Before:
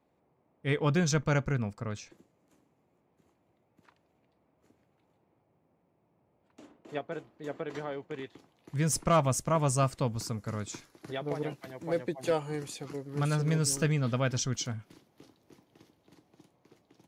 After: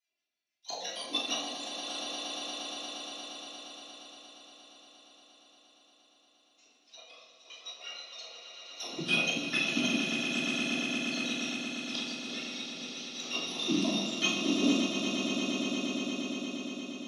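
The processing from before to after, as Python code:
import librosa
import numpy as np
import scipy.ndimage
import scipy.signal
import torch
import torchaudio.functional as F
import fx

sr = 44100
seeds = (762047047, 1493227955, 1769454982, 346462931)

y = fx.octave_mirror(x, sr, pivot_hz=1300.0)
y = fx.high_shelf(y, sr, hz=2700.0, db=10.0)
y = fx.level_steps(y, sr, step_db=13)
y = fx.env_flanger(y, sr, rest_ms=3.0, full_db=-25.5)
y = fx.dispersion(y, sr, late='lows', ms=41.0, hz=550.0)
y = fx.filter_lfo_bandpass(y, sr, shape='square', hz=6.4, low_hz=450.0, high_hz=2200.0, q=0.72)
y = fx.cabinet(y, sr, low_hz=210.0, low_slope=12, high_hz=7900.0, hz=(230.0, 620.0, 1600.0, 2600.0, 4100.0, 5900.0), db=(7, 4, -4, 4, 5, 6))
y = fx.echo_swell(y, sr, ms=117, loudest=8, wet_db=-9.0)
y = fx.room_shoebox(y, sr, seeds[0], volume_m3=690.0, walls='mixed', distance_m=3.2)
y = fx.upward_expand(y, sr, threshold_db=-43.0, expansion=1.5)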